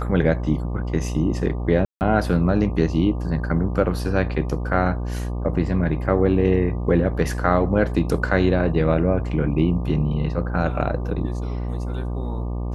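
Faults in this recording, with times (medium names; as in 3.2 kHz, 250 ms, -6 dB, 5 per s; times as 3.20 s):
buzz 60 Hz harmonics 20 -26 dBFS
1.85–2.01 s: dropout 159 ms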